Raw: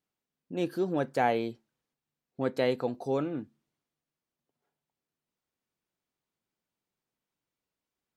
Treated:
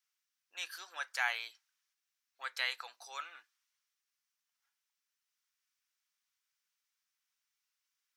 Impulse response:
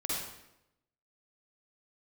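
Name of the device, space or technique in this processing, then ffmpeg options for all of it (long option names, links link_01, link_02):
headphones lying on a table: -af "highpass=frequency=1300:width=0.5412,highpass=frequency=1300:width=1.3066,equalizer=frequency=5700:width_type=o:width=0.37:gain=6.5,volume=3.5dB"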